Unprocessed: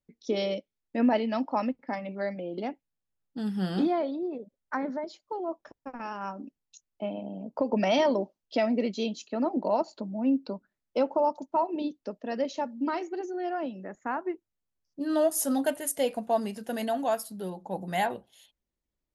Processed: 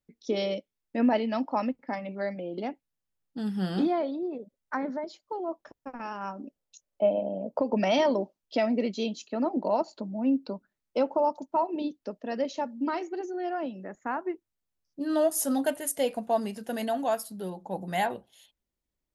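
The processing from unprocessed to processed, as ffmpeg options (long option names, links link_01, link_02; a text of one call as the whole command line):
ffmpeg -i in.wav -filter_complex "[0:a]asettb=1/sr,asplit=3[link_01][link_02][link_03];[link_01]atrim=end=6.444[link_04];[link_02]atrim=start=6.44:end=7.59,asetpts=PTS-STARTPTS,afade=type=in:duration=0.004:curve=qsin,afade=type=out:start_time=1.146:duration=0.004:curve=qsin,equalizer=frequency=560:width=2.2:gain=14[link_05];[link_03]atrim=start=7.586[link_06];[link_04][link_05]acrossfade=duration=0.004:curve1=hsin:curve2=qsin[link_07];[link_07][link_06]acrossfade=duration=0.004:curve1=qsin:curve2=hsin" out.wav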